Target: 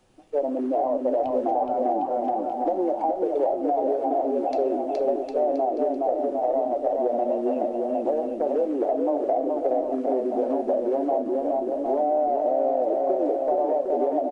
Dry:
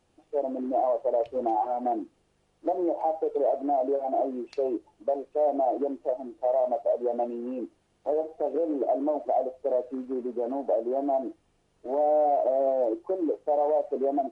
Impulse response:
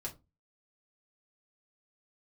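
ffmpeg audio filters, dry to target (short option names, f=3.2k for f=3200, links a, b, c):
-filter_complex "[0:a]aecho=1:1:420|756|1025|1240|1412:0.631|0.398|0.251|0.158|0.1,asplit=2[a][b];[1:a]atrim=start_sample=2205[c];[b][c]afir=irnorm=-1:irlink=0,volume=-7dB[d];[a][d]amix=inputs=2:normalize=0,acrossover=split=320|1100[e][f][g];[e]acompressor=threshold=-36dB:ratio=4[h];[f]acompressor=threshold=-28dB:ratio=4[i];[g]acompressor=threshold=-45dB:ratio=4[j];[h][i][j]amix=inputs=3:normalize=0,volume=4.5dB"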